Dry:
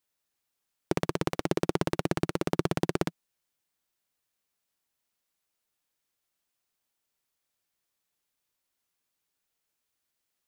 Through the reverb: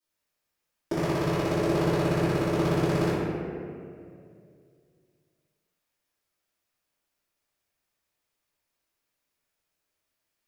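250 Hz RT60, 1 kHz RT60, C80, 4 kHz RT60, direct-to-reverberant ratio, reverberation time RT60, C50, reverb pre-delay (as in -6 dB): 2.7 s, 2.1 s, -1.0 dB, 1.3 s, -16.5 dB, 2.4 s, -3.5 dB, 3 ms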